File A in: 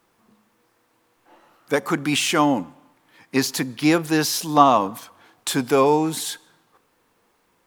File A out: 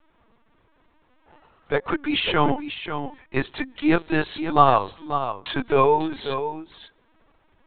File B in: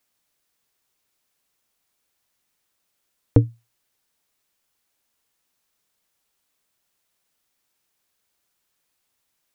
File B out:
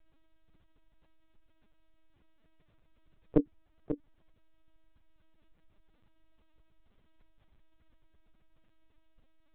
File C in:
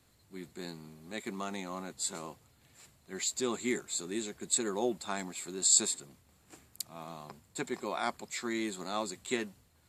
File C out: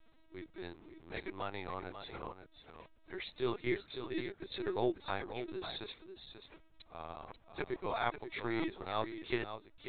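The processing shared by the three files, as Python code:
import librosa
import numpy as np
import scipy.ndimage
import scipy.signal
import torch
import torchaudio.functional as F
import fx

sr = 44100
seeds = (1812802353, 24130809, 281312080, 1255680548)

p1 = scipy.signal.sosfilt(scipy.signal.butter(4, 260.0, 'highpass', fs=sr, output='sos'), x)
p2 = fx.transient(p1, sr, attack_db=-2, sustain_db=-8)
p3 = fx.dmg_noise_colour(p2, sr, seeds[0], colour='brown', level_db=-63.0)
p4 = p3 + fx.echo_single(p3, sr, ms=540, db=-9.5, dry=0)
y = fx.lpc_vocoder(p4, sr, seeds[1], excitation='pitch_kept', order=16)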